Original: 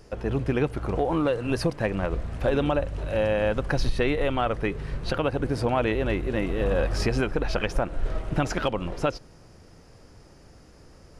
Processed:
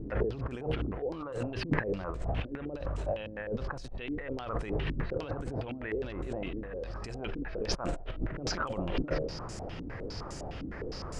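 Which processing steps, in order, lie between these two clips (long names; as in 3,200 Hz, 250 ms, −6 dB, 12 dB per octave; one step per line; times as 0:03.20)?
hum removal 77.54 Hz, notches 9
compressor whose output falls as the input rises −37 dBFS, ratio −1
low-pass on a step sequencer 9.8 Hz 280–7,800 Hz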